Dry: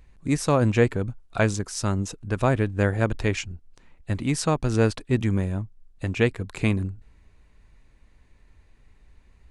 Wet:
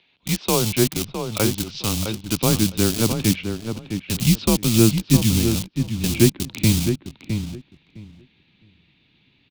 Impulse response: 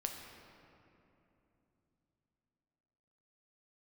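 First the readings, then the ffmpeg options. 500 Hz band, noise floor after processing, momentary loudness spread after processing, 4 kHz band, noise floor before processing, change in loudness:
0.0 dB, -62 dBFS, 11 LU, +12.5 dB, -57 dBFS, +4.5 dB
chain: -filter_complex "[0:a]highpass=f=280:t=q:w=0.5412,highpass=f=280:t=q:w=1.307,lowpass=f=3600:t=q:w=0.5176,lowpass=f=3600:t=q:w=0.7071,lowpass=f=3600:t=q:w=1.932,afreqshift=-110,acrossover=split=1500[s0][s1];[s1]acompressor=threshold=0.00398:ratio=12[s2];[s0][s2]amix=inputs=2:normalize=0,asubboost=boost=7:cutoff=230,asplit=2[s3][s4];[s4]acrusher=bits=4:mix=0:aa=0.000001,volume=0.355[s5];[s3][s5]amix=inputs=2:normalize=0,asplit=2[s6][s7];[s7]adelay=660,lowpass=f=2300:p=1,volume=0.447,asplit=2[s8][s9];[s9]adelay=660,lowpass=f=2300:p=1,volume=0.17,asplit=2[s10][s11];[s11]adelay=660,lowpass=f=2300:p=1,volume=0.17[s12];[s6][s8][s10][s12]amix=inputs=4:normalize=0,aexciter=amount=7.6:drive=8.1:freq=2600,volume=0.891"

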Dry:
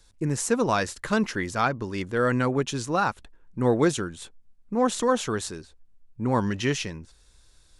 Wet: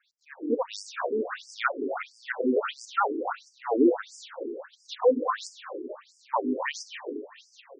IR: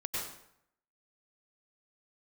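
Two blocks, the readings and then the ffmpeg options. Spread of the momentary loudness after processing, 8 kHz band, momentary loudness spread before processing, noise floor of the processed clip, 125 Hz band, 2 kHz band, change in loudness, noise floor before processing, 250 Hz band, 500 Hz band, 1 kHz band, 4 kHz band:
15 LU, -12.0 dB, 12 LU, -64 dBFS, under -30 dB, -4.0 dB, -3.5 dB, -58 dBFS, -3.5 dB, -1.5 dB, -3.0 dB, -5.5 dB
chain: -filter_complex "[0:a]adynamicsmooth=sensitivity=2:basefreq=3500,asplit=7[s0][s1][s2][s3][s4][s5][s6];[s1]adelay=391,afreqshift=56,volume=0.178[s7];[s2]adelay=782,afreqshift=112,volume=0.101[s8];[s3]adelay=1173,afreqshift=168,volume=0.0575[s9];[s4]adelay=1564,afreqshift=224,volume=0.0331[s10];[s5]adelay=1955,afreqshift=280,volume=0.0188[s11];[s6]adelay=2346,afreqshift=336,volume=0.0107[s12];[s0][s7][s8][s9][s10][s11][s12]amix=inputs=7:normalize=0,asplit=2[s13][s14];[1:a]atrim=start_sample=2205,asetrate=22491,aresample=44100[s15];[s14][s15]afir=irnorm=-1:irlink=0,volume=0.376[s16];[s13][s16]amix=inputs=2:normalize=0,afftfilt=real='re*between(b*sr/1024,310*pow(6800/310,0.5+0.5*sin(2*PI*1.5*pts/sr))/1.41,310*pow(6800/310,0.5+0.5*sin(2*PI*1.5*pts/sr))*1.41)':imag='im*between(b*sr/1024,310*pow(6800/310,0.5+0.5*sin(2*PI*1.5*pts/sr))/1.41,310*pow(6800/310,0.5+0.5*sin(2*PI*1.5*pts/sr))*1.41)':win_size=1024:overlap=0.75"

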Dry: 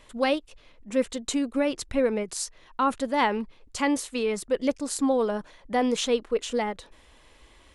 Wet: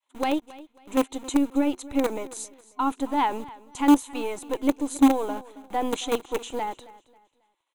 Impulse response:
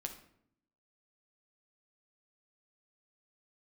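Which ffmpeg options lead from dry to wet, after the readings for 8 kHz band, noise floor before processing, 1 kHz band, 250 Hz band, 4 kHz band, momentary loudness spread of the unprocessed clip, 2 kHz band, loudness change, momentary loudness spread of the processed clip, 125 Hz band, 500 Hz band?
-3.0 dB, -56 dBFS, +2.0 dB, +4.5 dB, -3.5 dB, 8 LU, -4.0 dB, +1.5 dB, 15 LU, no reading, -3.5 dB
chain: -filter_complex "[0:a]agate=range=0.0224:threshold=0.00794:ratio=3:detection=peak,adynamicequalizer=threshold=0.0158:dfrequency=340:dqfactor=1.2:tfrequency=340:tqfactor=1.2:attack=5:release=100:ratio=0.375:range=2:mode=boostabove:tftype=bell,acrossover=split=540[s0][s1];[s0]acrusher=bits=4:dc=4:mix=0:aa=0.000001[s2];[s2][s1]amix=inputs=2:normalize=0,superequalizer=6b=3.16:9b=2:11b=0.631:14b=0.316,aecho=1:1:271|542|813:0.106|0.0328|0.0102,volume=0.631"

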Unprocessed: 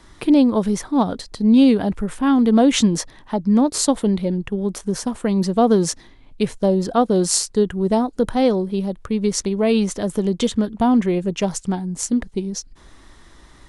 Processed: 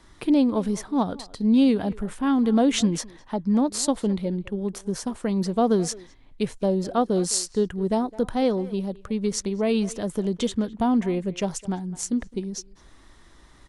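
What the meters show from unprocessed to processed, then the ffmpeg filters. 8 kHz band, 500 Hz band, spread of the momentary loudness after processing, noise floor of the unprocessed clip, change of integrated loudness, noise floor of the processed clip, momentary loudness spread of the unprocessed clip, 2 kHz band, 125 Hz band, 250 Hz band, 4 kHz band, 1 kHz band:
-5.5 dB, -5.5 dB, 10 LU, -48 dBFS, -5.5 dB, -52 dBFS, 10 LU, -5.5 dB, -5.5 dB, -5.5 dB, -5.5 dB, -5.5 dB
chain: -filter_complex "[0:a]asplit=2[s0][s1];[s1]adelay=210,highpass=300,lowpass=3400,asoftclip=type=hard:threshold=0.251,volume=0.126[s2];[s0][s2]amix=inputs=2:normalize=0,volume=0.531"

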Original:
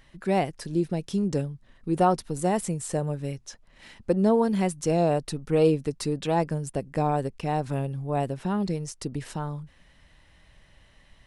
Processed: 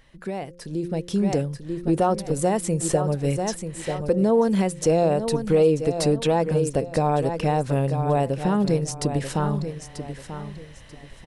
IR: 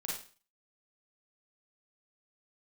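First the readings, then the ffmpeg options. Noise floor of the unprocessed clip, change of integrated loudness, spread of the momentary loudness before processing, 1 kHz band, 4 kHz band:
-58 dBFS, +4.0 dB, 11 LU, +2.5 dB, +5.0 dB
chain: -filter_complex "[0:a]bandreject=f=174.9:t=h:w=4,bandreject=f=349.8:t=h:w=4,bandreject=f=524.7:t=h:w=4,asplit=2[s0][s1];[s1]aecho=0:1:938|1876|2814:0.251|0.0653|0.017[s2];[s0][s2]amix=inputs=2:normalize=0,alimiter=limit=0.0891:level=0:latency=1:release=409,dynaudnorm=f=130:g=17:m=2.82,equalizer=f=500:t=o:w=0.27:g=6"

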